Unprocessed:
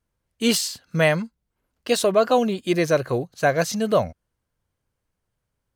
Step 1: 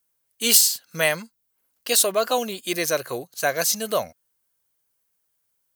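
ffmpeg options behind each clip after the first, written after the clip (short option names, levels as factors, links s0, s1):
-af "aemphasis=mode=production:type=riaa,volume=0.75"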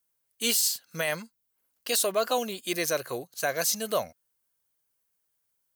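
-af "alimiter=limit=0.282:level=0:latency=1:release=20,volume=0.631"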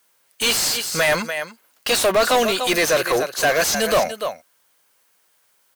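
-filter_complex "[0:a]aecho=1:1:292:0.141,asplit=2[s0][s1];[s1]highpass=f=720:p=1,volume=17.8,asoftclip=type=tanh:threshold=0.2[s2];[s0][s2]amix=inputs=2:normalize=0,lowpass=f=3400:p=1,volume=0.501,volume=1.78"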